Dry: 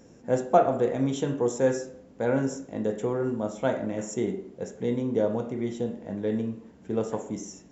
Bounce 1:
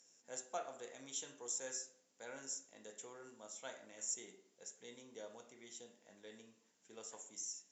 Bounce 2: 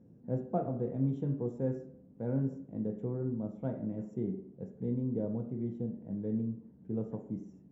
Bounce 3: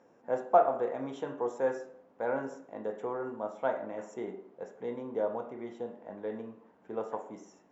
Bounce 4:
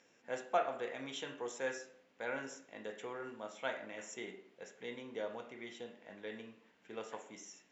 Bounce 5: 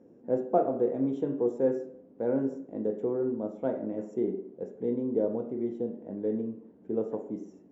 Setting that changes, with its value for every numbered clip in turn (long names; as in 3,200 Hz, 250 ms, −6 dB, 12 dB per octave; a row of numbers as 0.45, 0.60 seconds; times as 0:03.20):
resonant band-pass, frequency: 7,400, 140, 960, 2,500, 350 Hertz